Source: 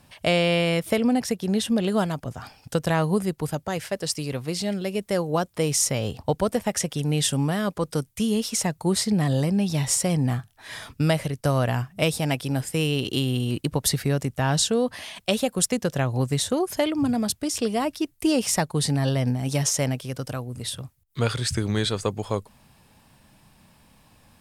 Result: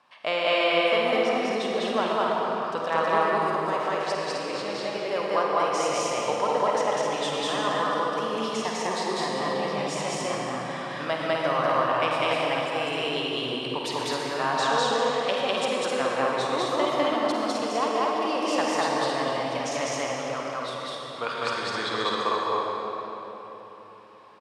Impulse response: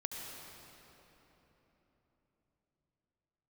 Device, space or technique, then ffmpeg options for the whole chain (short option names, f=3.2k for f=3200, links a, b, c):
station announcement: -filter_complex "[0:a]highpass=490,lowpass=3.8k,equalizer=f=1.1k:t=o:w=0.49:g=10,aecho=1:1:49.56|201.2|256.6:0.355|1|0.631[a];[1:a]atrim=start_sample=2205[b];[a][b]afir=irnorm=-1:irlink=0,volume=-1.5dB"